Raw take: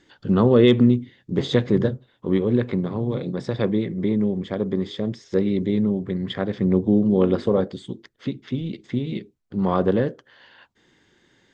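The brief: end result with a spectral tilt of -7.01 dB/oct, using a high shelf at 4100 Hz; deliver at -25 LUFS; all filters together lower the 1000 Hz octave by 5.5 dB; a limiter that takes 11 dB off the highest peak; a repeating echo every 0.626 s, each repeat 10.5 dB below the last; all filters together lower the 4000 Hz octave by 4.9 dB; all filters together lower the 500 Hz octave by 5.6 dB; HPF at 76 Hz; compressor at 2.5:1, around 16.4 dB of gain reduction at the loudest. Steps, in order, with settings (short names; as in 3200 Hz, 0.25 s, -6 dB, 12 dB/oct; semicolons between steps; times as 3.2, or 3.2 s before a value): HPF 76 Hz; bell 500 Hz -6.5 dB; bell 1000 Hz -4.5 dB; bell 4000 Hz -4 dB; high shelf 4100 Hz -3 dB; compressor 2.5:1, threshold -39 dBFS; limiter -31.5 dBFS; feedback echo 0.626 s, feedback 30%, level -10.5 dB; gain +16 dB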